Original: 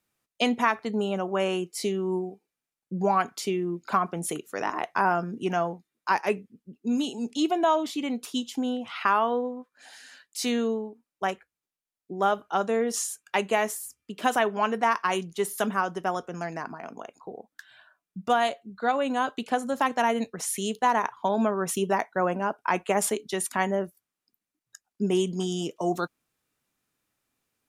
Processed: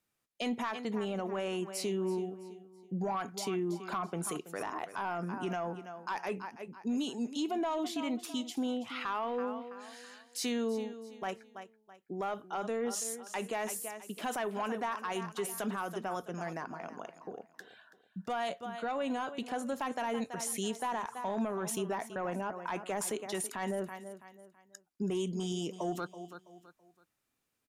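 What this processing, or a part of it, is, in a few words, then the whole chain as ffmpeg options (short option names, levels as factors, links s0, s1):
soft clipper into limiter: -af "aecho=1:1:329|658|987:0.168|0.0554|0.0183,asoftclip=type=tanh:threshold=0.178,alimiter=limit=0.0708:level=0:latency=1:release=37,volume=0.631"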